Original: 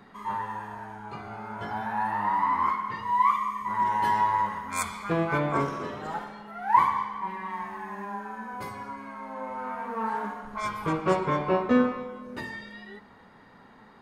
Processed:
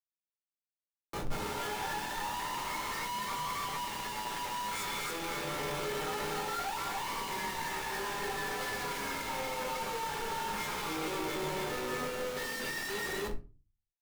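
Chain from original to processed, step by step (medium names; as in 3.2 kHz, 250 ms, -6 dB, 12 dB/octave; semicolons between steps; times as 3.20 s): fade-in on the opening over 3.03 s; frequency weighting D; gate -45 dBFS, range -13 dB; comb 2.3 ms, depth 84%; compression 6:1, threshold -33 dBFS, peak gain reduction 20 dB; loudspeakers at several distances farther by 65 m -12 dB, 97 m -3 dB; Schmitt trigger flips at -45.5 dBFS; simulated room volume 140 m³, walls furnished, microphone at 1.2 m; trim -3.5 dB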